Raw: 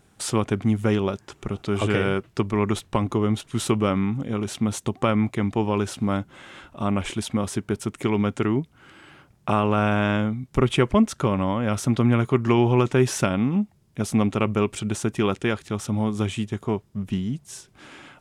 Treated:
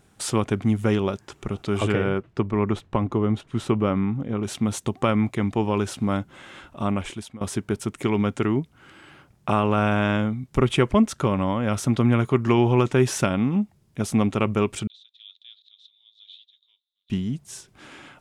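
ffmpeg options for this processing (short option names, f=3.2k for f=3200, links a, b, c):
-filter_complex "[0:a]asettb=1/sr,asplit=3[a][b][c];[a]atrim=end=1.924[d];[b]atrim=start=1.92:end=4.44,asetpts=PTS-STARTPTS,afade=t=in:d=0.004:c=qsin,afade=t=out:st=2.516:d=0.004:c=qsin,lowpass=f=1.7k:p=1[e];[c]atrim=start=4.436[f];[d][e]acrossfade=d=0.004:c1=hsin:c2=qsin[g];[g][f]acrossfade=d=0.004:c1=qsin:c2=hsin,asettb=1/sr,asplit=3[h][i][j];[h]atrim=end=14.874[k];[i]atrim=start=14.87:end=17.1,asetpts=PTS-STARTPTS,afade=t=in:d=0.004:c=qsin,afade=t=out:st=2.226:d=0.004:c=qsin,asuperpass=centerf=3700:order=4:qfactor=6.6[l];[j]atrim=start=17.096[m];[k][l]acrossfade=d=0.004:c1=hsin:c2=qsin[n];[n][m]acrossfade=d=0.004:c1=qsin:c2=hsin,asplit=2[o][p];[o]atrim=end=7.41,asetpts=PTS-STARTPTS,afade=t=out:st=6.86:d=0.55:silence=0.0841395[q];[p]atrim=start=7.41,asetpts=PTS-STARTPTS,afade=t=in:d=0.004:c=hsin:silence=0.0841395[r];[q][r]concat=n=2:v=0:a=1"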